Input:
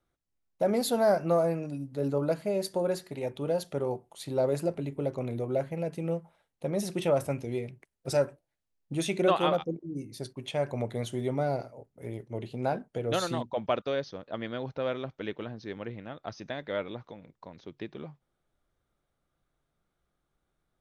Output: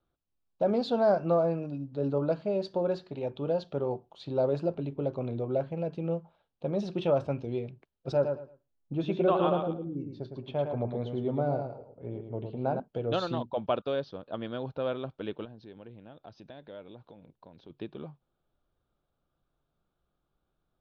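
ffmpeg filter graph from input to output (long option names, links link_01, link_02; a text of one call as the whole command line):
ffmpeg -i in.wav -filter_complex "[0:a]asettb=1/sr,asplit=3[link_01][link_02][link_03];[link_01]atrim=end=8.124[link_04];[link_02]atrim=start=8.12:end=12.8,asetpts=PTS-STARTPTS,afade=type=in:duration=0.004:curve=qsin,afade=type=out:start_time=4.676:duration=0.004:curve=qsin,lowpass=frequency=1500:poles=1,aecho=1:1:109|218|327:0.501|0.11|0.0243,atrim=end_sample=206388[link_05];[link_03]atrim=start=12.796[link_06];[link_04][link_05]acrossfade=duration=0.004:curve1=hsin:curve2=qsin[link_07];[link_07][link_06]acrossfade=duration=0.004:curve1=qsin:curve2=hsin,asettb=1/sr,asplit=3[link_08][link_09][link_10];[link_08]atrim=end=15.454[link_11];[link_09]atrim=start=15.45:end=17.7,asetpts=PTS-STARTPTS,afade=type=in:duration=0.004:curve=qsin,afade=type=out:start_time=2.246:duration=0.004:curve=qsin,equalizer=frequency=1200:width_type=o:width=0.34:gain=-7,acompressor=threshold=-50dB:ratio=2:attack=3.2:release=140:knee=1:detection=peak[link_12];[link_10]atrim=start=17.696[link_13];[link_11][link_12]acrossfade=duration=0.004:curve1=hsin:curve2=qsin[link_14];[link_14][link_13]acrossfade=duration=0.004:curve1=qsin:curve2=hsin,lowpass=frequency=4100:width=0.5412,lowpass=frequency=4100:width=1.3066,equalizer=frequency=2000:width_type=o:width=0.4:gain=-13.5" out.wav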